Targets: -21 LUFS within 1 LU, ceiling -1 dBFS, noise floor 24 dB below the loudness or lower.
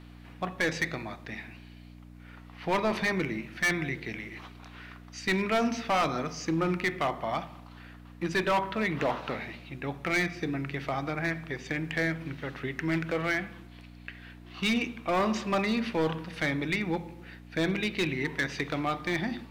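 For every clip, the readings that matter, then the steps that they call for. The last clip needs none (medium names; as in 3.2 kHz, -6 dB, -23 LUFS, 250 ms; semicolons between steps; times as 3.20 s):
clipped samples 1.8%; clipping level -21.5 dBFS; hum 60 Hz; highest harmonic 300 Hz; hum level -47 dBFS; loudness -30.5 LUFS; peak level -21.5 dBFS; loudness target -21.0 LUFS
-> clip repair -21.5 dBFS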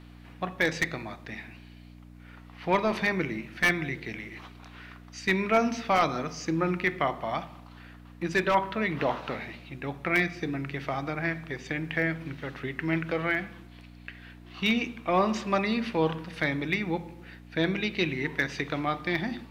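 clipped samples 0.0%; hum 60 Hz; highest harmonic 300 Hz; hum level -48 dBFS
-> de-hum 60 Hz, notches 5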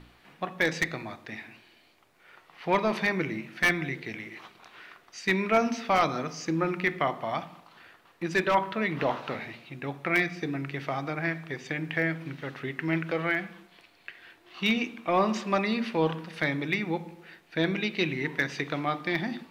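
hum not found; loudness -29.0 LUFS; peak level -12.0 dBFS; loudness target -21.0 LUFS
-> trim +8 dB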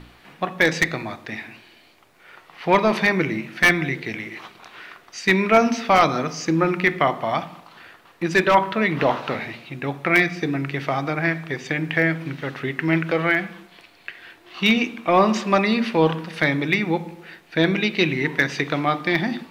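loudness -21.0 LUFS; peak level -4.0 dBFS; noise floor -52 dBFS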